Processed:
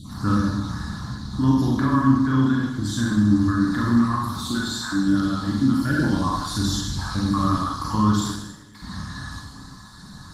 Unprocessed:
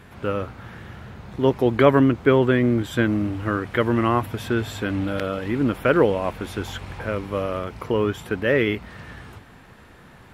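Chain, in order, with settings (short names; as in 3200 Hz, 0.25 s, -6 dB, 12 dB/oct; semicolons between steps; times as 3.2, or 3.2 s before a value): random spectral dropouts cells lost 29%; EQ curve 190 Hz 0 dB, 470 Hz -29 dB, 1100 Hz +2 dB, 2600 Hz -25 dB, 4000 Hz +13 dB; limiter -22 dBFS, peak gain reduction 11 dB; LPF 6000 Hz 12 dB/oct; small resonant body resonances 290/1700 Hz, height 16 dB, ringing for 65 ms; 8.29–8.75 flipped gate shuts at -32 dBFS, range -29 dB; vocal rider within 4 dB 2 s; 1.8–2.72 de-hum 85.58 Hz, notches 5; 4.39–5.08 bell 100 Hz -12 dB 1.2 oct; reverb RT60 1.0 s, pre-delay 30 ms, DRR -3.5 dB; gain +4 dB; Opus 24 kbps 48000 Hz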